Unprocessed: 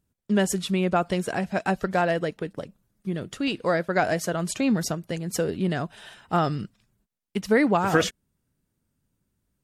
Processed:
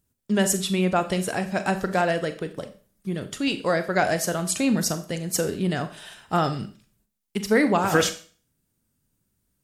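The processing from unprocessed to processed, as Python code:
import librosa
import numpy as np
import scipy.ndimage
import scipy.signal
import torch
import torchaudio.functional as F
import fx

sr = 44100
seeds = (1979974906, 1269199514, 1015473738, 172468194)

y = fx.high_shelf(x, sr, hz=4800.0, db=8.5)
y = fx.rev_schroeder(y, sr, rt60_s=0.41, comb_ms=29, drr_db=9.5)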